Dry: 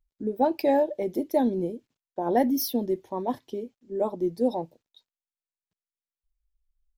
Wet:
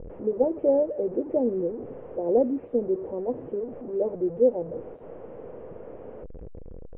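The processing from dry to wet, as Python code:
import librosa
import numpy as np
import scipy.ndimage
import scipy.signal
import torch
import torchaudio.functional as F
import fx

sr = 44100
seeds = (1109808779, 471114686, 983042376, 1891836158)

y = fx.delta_mod(x, sr, bps=16000, step_db=-28.0)
y = fx.lowpass_res(y, sr, hz=490.0, q=4.9)
y = y * 10.0 ** (-6.0 / 20.0)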